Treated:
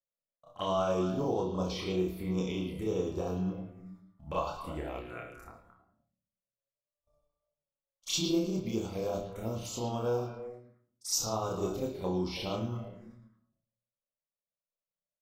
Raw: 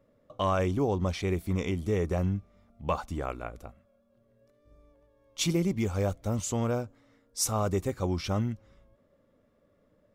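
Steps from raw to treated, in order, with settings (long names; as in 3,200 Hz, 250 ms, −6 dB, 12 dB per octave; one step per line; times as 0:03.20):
notch filter 620 Hz, Q 18
hum removal 100.4 Hz, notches 34
noise gate −55 dBFS, range −32 dB
low-shelf EQ 270 Hz −8.5 dB
phaser swept by the level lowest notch 320 Hz, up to 2,000 Hz, full sweep at −30 dBFS
time stretch by overlap-add 1.5×, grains 199 ms
double-tracking delay 27 ms −4 dB
echo through a band-pass that steps 110 ms, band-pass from 3,500 Hz, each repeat −1.4 octaves, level −5 dB
on a send at −7 dB: convolution reverb RT60 0.55 s, pre-delay 3 ms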